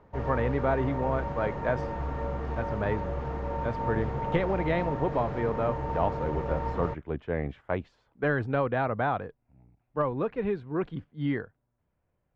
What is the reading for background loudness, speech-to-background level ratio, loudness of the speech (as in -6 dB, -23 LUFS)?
-33.5 LUFS, 2.5 dB, -31.0 LUFS